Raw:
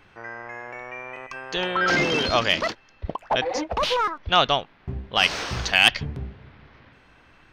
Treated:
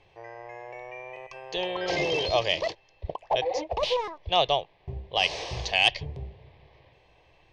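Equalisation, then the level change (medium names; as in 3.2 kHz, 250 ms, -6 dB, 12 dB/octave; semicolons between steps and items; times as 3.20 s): distance through air 94 m; bass shelf 70 Hz -6 dB; static phaser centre 580 Hz, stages 4; 0.0 dB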